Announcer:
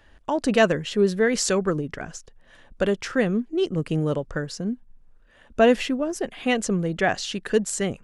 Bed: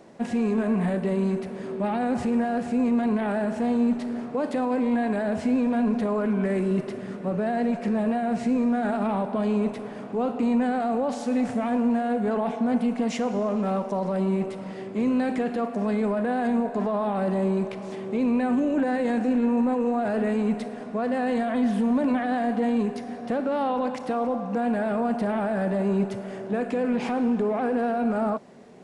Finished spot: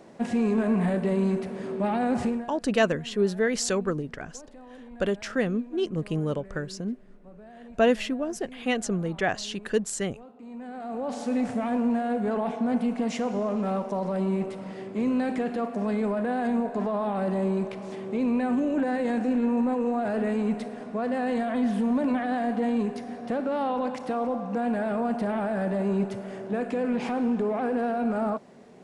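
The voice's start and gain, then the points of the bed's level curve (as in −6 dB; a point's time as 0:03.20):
2.20 s, −4.0 dB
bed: 0:02.27 0 dB
0:02.57 −22 dB
0:10.39 −22 dB
0:11.18 −2 dB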